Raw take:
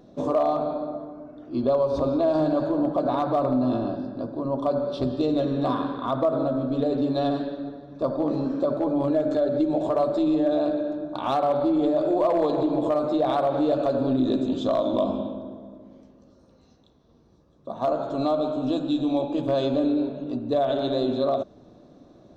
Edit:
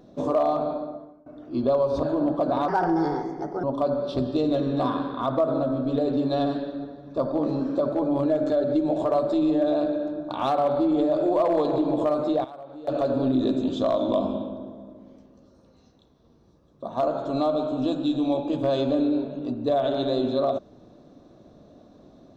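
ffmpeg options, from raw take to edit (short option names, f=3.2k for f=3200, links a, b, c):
-filter_complex "[0:a]asplit=7[a][b][c][d][e][f][g];[a]atrim=end=1.26,asetpts=PTS-STARTPTS,afade=t=out:st=0.71:d=0.55:silence=0.0944061[h];[b]atrim=start=1.26:end=2.032,asetpts=PTS-STARTPTS,afade=t=in:d=0.004:c=hsin:silence=0.0944061[i];[c]atrim=start=2.598:end=3.254[j];[d]atrim=start=3.25:end=4.48,asetpts=PTS-STARTPTS,asetrate=56889,aresample=44100[k];[e]atrim=start=4.476:end=13.29,asetpts=PTS-STARTPTS,afade=t=out:st=8.454:d=0.36:c=log:silence=0.125893[l];[f]atrim=start=13.29:end=13.72,asetpts=PTS-STARTPTS,volume=-18dB[m];[g]atrim=start=13.72,asetpts=PTS-STARTPTS,afade=t=in:d=0.36:c=log:silence=0.125893[n];[h][i]concat=n=2:v=0:a=1[o];[o][j]acrossfade=d=0.004:c1=hsin:c2=hsin[p];[p][k]acrossfade=d=0.004:c1=hsin:c2=hsin[q];[l][m][n]concat=n=3:v=0:a=1[r];[q][r]acrossfade=d=0.004:c1=hsin:c2=hsin"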